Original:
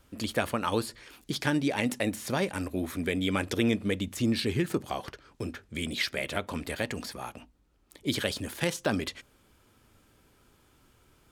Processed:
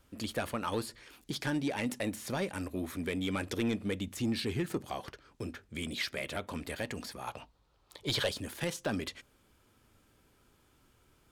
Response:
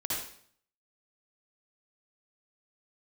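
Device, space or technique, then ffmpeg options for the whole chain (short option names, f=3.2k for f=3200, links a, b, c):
saturation between pre-emphasis and de-emphasis: -filter_complex "[0:a]asettb=1/sr,asplit=3[a][b][c];[a]atrim=end=7.274[d];[b]atrim=start=7.27:end=8.29,asetpts=PTS-STARTPTS,afade=t=in:d=0.004:c=qsin,afade=t=out:st=1.016:d=0.004:c=qsin,equalizer=f=125:t=o:w=1:g=7,equalizer=f=250:t=o:w=1:g=-8,equalizer=f=500:t=o:w=1:g=6,equalizer=f=1k:t=o:w=1:g=10,equalizer=f=4k:t=o:w=1:g=10[e];[c]atrim=start=8.286[f];[d][e]acrossfade=d=0.004:c1=hsin:c2=qsin[g];[g][f]acrossfade=d=0.004:c1=qsin:c2=hsin,highshelf=f=8.5k:g=10.5,asoftclip=type=tanh:threshold=-19dB,highshelf=f=8.5k:g=-10.5,volume=-4dB"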